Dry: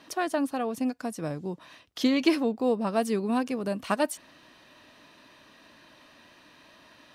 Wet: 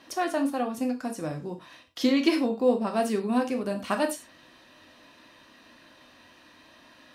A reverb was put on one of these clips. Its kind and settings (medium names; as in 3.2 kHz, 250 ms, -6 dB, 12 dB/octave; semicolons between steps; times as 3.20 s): gated-style reverb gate 130 ms falling, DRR 3.5 dB; trim -1 dB